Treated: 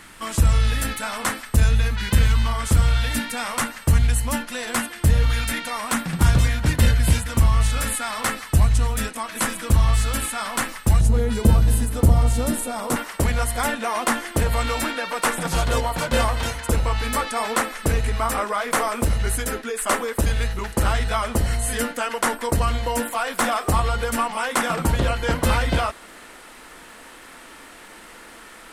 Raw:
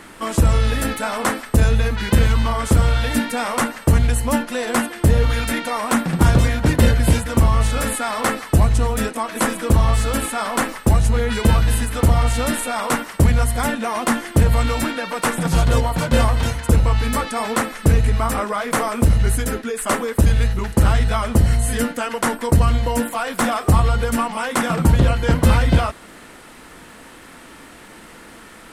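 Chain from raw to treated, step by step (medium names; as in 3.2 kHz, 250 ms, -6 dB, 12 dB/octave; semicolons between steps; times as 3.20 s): peaking EQ 410 Hz -10 dB 2.7 oct, from 11.01 s 2 kHz, from 12.96 s 120 Hz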